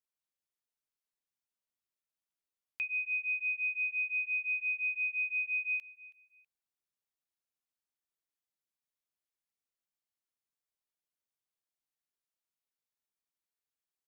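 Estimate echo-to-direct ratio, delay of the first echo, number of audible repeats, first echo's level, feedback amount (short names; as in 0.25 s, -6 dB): -20.0 dB, 0.324 s, 2, -20.5 dB, 30%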